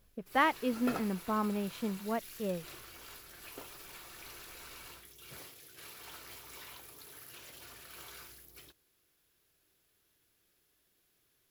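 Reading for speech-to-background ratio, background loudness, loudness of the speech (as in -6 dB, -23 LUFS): 13.5 dB, -47.5 LUFS, -34.0 LUFS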